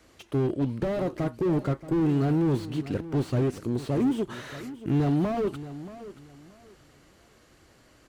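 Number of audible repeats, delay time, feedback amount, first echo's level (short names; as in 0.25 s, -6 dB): 2, 0.629 s, 25%, -15.0 dB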